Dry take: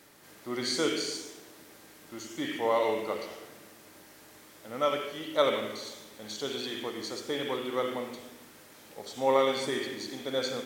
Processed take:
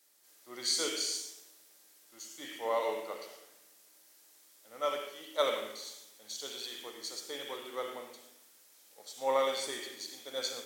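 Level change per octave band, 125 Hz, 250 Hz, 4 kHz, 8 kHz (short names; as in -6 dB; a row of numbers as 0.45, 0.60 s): under -15 dB, -13.0 dB, -2.0 dB, +2.5 dB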